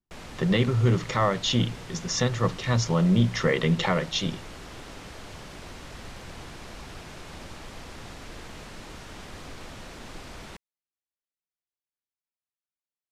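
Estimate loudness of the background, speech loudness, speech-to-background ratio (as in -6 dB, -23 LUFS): -42.5 LUFS, -25.0 LUFS, 17.5 dB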